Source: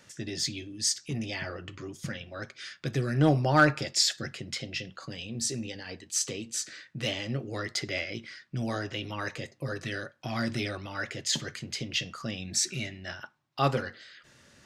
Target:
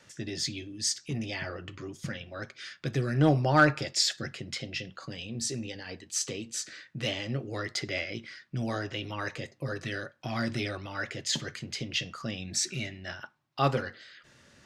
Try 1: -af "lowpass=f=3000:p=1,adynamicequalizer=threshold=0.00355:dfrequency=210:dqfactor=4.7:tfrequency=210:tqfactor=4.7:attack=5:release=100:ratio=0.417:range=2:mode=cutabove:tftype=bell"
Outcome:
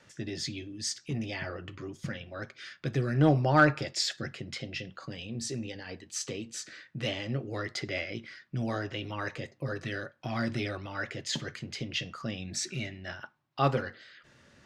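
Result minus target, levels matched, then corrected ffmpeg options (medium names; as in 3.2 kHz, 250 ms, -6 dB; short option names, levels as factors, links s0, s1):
8 kHz band -4.0 dB
-af "lowpass=f=7500:p=1,adynamicequalizer=threshold=0.00355:dfrequency=210:dqfactor=4.7:tfrequency=210:tqfactor=4.7:attack=5:release=100:ratio=0.417:range=2:mode=cutabove:tftype=bell"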